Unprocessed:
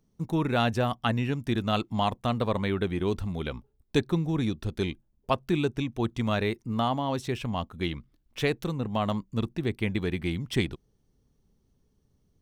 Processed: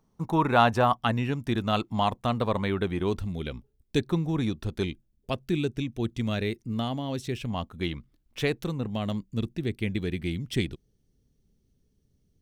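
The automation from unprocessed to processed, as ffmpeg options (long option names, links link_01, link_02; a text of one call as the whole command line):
ffmpeg -i in.wav -af "asetnsamples=nb_out_samples=441:pad=0,asendcmd='0.97 equalizer g 2;3.2 equalizer g -8.5;4.07 equalizer g 1;4.85 equalizer g -10.5;7.5 equalizer g -2;8.9 equalizer g -10.5',equalizer=frequency=990:width_type=o:width=1.2:gain=11" out.wav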